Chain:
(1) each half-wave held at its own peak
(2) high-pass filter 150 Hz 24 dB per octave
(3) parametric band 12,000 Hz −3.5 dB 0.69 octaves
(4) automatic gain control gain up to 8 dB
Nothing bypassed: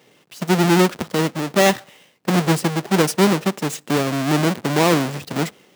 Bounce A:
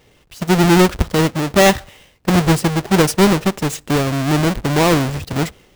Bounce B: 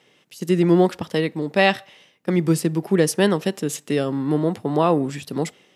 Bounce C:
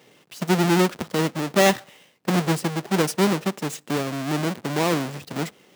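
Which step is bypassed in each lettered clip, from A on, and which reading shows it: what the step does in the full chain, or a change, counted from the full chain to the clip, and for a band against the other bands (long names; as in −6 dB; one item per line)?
2, 125 Hz band +2.0 dB
1, distortion level −5 dB
4, change in crest factor +2.0 dB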